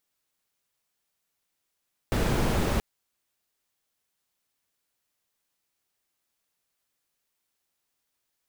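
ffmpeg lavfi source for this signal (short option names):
-f lavfi -i "anoisesrc=c=brown:a=0.279:d=0.68:r=44100:seed=1"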